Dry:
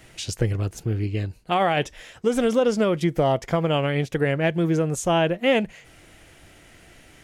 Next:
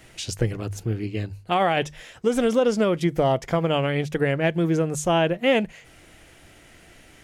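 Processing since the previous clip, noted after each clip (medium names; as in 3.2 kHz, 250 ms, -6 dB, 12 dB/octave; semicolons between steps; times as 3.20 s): hum notches 50/100/150 Hz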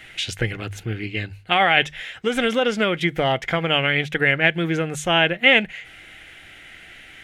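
high-order bell 2.3 kHz +12 dB; small resonant body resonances 780/2100 Hz, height 7 dB; trim -1.5 dB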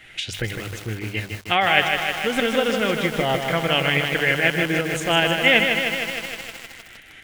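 tremolo saw up 5 Hz, depth 40%; bit-crushed delay 155 ms, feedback 80%, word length 6-bit, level -5 dB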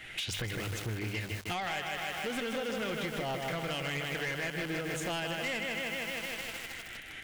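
compression 6:1, threshold -28 dBFS, peak gain reduction 16 dB; saturation -30 dBFS, distortion -10 dB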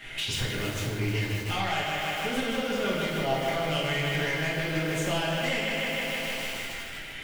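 reverberation RT60 0.95 s, pre-delay 5 ms, DRR -4.5 dB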